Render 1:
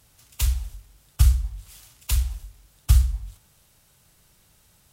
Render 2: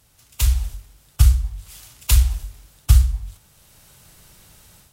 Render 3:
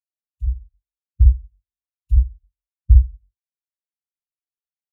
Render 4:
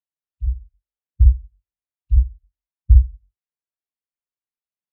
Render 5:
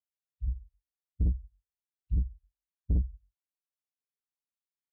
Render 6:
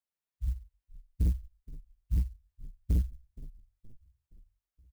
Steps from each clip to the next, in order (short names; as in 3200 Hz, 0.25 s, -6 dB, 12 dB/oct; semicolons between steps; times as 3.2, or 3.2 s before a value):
AGC gain up to 10 dB
spectral expander 2.5:1
air absorption 330 m
tube stage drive 14 dB, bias 0.3; gain -8 dB
frequency-shifting echo 0.47 s, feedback 50%, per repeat -31 Hz, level -17.5 dB; clock jitter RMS 0.059 ms